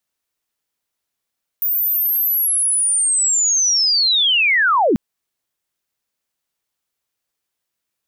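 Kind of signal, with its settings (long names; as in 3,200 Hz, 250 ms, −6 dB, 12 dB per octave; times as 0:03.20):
glide linear 15,000 Hz → 180 Hz −15.5 dBFS → −11.5 dBFS 3.34 s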